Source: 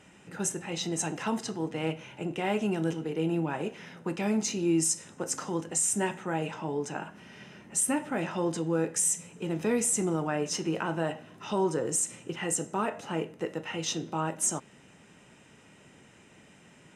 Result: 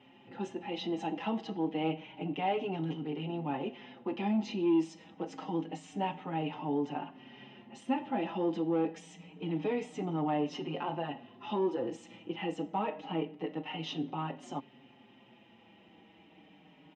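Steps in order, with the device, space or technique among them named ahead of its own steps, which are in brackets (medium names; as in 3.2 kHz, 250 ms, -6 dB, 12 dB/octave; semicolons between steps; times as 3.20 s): barber-pole flanger into a guitar amplifier (endless flanger 5.3 ms -0.27 Hz; saturation -22 dBFS, distortion -20 dB; cabinet simulation 77–3800 Hz, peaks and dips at 96 Hz -7 dB, 280 Hz +10 dB, 800 Hz +9 dB, 1.5 kHz -9 dB, 3.1 kHz +6 dB); trim -2 dB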